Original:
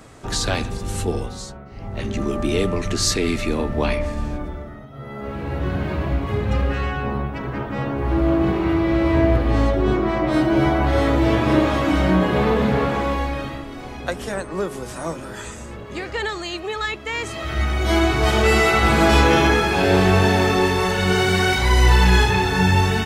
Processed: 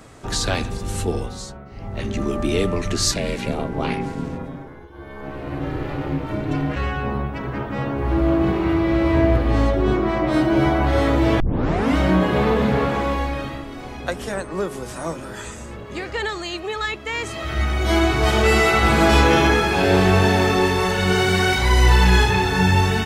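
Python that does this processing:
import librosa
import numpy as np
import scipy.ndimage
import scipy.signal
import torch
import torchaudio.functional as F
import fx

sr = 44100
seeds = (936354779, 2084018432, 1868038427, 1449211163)

y = fx.ring_mod(x, sr, carrier_hz=210.0, at=(3.11, 6.75), fade=0.02)
y = fx.edit(y, sr, fx.tape_start(start_s=11.4, length_s=0.56), tone=tone)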